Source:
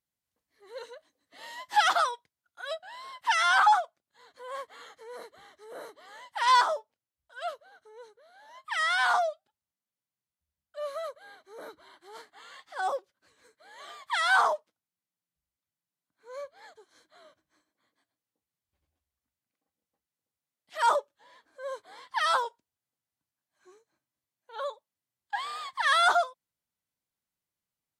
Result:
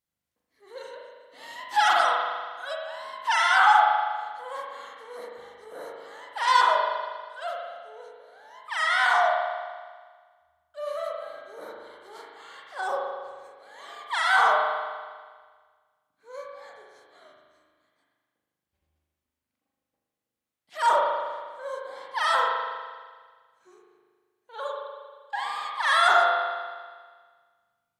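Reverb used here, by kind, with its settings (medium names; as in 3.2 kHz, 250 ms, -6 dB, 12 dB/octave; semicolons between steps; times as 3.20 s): spring tank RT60 1.6 s, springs 39 ms, chirp 75 ms, DRR -2 dB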